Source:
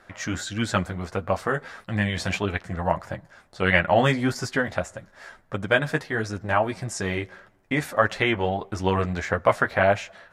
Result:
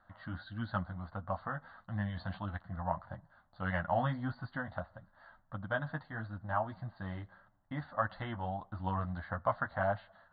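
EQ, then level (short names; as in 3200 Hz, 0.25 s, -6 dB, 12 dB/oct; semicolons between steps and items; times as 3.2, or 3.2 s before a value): brick-wall FIR low-pass 4700 Hz; air absorption 200 m; fixed phaser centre 1000 Hz, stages 4; -8.5 dB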